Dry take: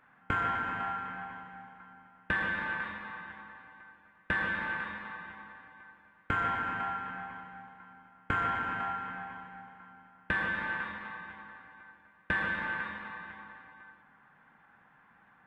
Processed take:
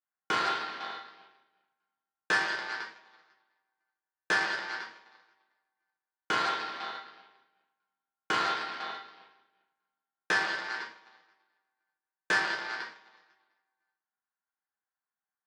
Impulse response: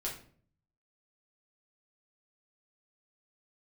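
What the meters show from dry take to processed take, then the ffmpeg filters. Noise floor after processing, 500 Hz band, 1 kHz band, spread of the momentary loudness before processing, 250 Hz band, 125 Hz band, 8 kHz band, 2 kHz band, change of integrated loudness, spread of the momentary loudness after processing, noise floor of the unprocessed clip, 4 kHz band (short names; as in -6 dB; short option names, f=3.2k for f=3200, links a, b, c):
under -85 dBFS, +4.0 dB, 0.0 dB, 21 LU, -3.5 dB, -11.5 dB, n/a, +0.5 dB, +3.0 dB, 14 LU, -63 dBFS, +11.5 dB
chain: -filter_complex "[0:a]aeval=exprs='0.158*(cos(1*acos(clip(val(0)/0.158,-1,1)))-cos(1*PI/2))+0.0224*(cos(7*acos(clip(val(0)/0.158,-1,1)))-cos(7*PI/2))':c=same,highpass=350[a];[1:a]atrim=start_sample=2205,afade=t=out:st=0.17:d=0.01,atrim=end_sample=7938[b];[a][b]afir=irnorm=-1:irlink=0,volume=5.5dB"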